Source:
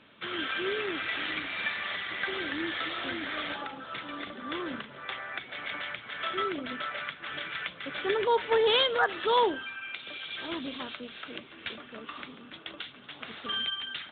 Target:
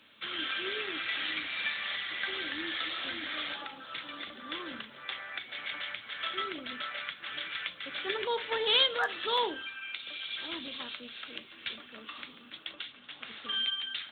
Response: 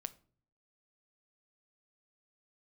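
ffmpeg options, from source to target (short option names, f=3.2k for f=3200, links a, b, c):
-filter_complex "[0:a]asettb=1/sr,asplit=3[a][b][c];[a]atrim=end=12.734[d];[b]atrim=start=12.73:end=13.55,asetpts=PTS-STARTPTS,afade=t=in:d=0.004:c=qsin,afade=t=out:st=0.816:d=0.004:c=qsin,lowpass=3.9k[e];[c]atrim=start=13.546[f];[d][e]acrossfade=d=0.004:c1=hsin:c2=qsin[g];[g][f]acrossfade=d=0.004:c1=qsin:c2=hsin,acrossover=split=120[h][i];[i]crystalizer=i=6:c=0[j];[h][j]amix=inputs=2:normalize=0[k];[1:a]atrim=start_sample=2205,asetrate=79380,aresample=44100[l];[k][l]afir=irnorm=-1:irlink=0"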